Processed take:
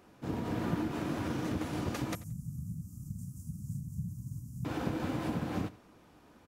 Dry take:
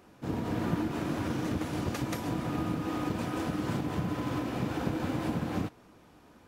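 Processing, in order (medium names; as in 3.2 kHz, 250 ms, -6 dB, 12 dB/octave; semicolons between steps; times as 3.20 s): 2.15–4.65 s: inverse Chebyshev band-stop 330–3900 Hz, stop band 40 dB; feedback delay 87 ms, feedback 17%, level -19 dB; trim -2.5 dB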